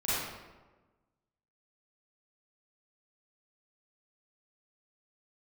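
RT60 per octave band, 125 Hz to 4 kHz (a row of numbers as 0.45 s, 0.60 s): 1.4 s, 1.4 s, 1.3 s, 1.2 s, 0.95 s, 0.75 s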